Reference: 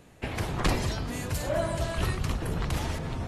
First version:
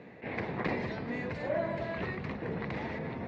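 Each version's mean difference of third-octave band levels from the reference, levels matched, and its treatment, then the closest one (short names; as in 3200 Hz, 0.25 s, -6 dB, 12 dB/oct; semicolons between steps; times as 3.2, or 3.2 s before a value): 7.5 dB: compressor 1.5:1, threshold -48 dBFS, peak gain reduction 9.5 dB; speaker cabinet 160–3400 Hz, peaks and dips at 210 Hz +5 dB, 470 Hz +5 dB, 1300 Hz -6 dB, 2000 Hz +7 dB, 3100 Hz -10 dB; attack slew limiter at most 230 dB/s; gain +4.5 dB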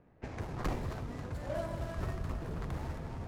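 4.0 dB: median filter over 15 samples; low-pass opened by the level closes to 2500 Hz, open at -26.5 dBFS; on a send: split-band echo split 540 Hz, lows 0.163 s, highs 0.269 s, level -10.5 dB; on the sum: gain -8.5 dB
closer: second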